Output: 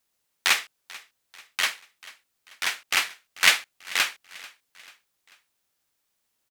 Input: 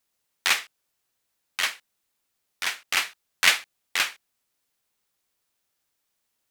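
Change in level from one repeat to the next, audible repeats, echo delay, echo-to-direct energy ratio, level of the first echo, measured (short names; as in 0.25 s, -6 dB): -6.5 dB, 3, 0.44 s, -19.5 dB, -20.5 dB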